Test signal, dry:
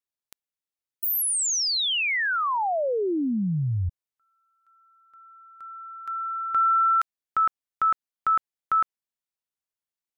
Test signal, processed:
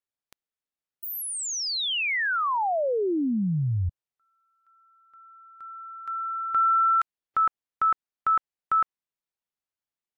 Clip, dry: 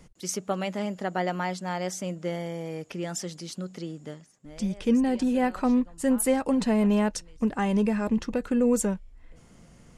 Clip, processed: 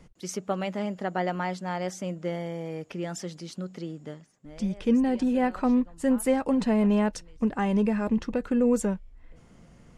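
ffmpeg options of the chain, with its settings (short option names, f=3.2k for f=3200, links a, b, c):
-af "highshelf=f=5.2k:g=-9" -ar 44100 -c:a aac -b:a 128k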